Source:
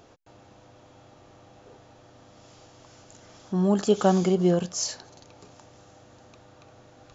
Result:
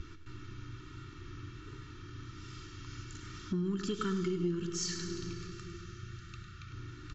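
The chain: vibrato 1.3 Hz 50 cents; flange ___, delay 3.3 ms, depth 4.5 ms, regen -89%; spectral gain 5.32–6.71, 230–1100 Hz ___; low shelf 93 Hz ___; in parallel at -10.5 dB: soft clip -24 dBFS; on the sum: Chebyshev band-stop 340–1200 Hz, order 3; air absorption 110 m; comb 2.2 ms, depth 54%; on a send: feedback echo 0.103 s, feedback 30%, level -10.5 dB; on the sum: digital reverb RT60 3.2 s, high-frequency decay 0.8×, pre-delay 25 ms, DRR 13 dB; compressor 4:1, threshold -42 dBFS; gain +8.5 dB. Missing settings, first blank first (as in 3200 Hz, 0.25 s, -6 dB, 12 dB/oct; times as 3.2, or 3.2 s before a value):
1.4 Hz, -13 dB, +8 dB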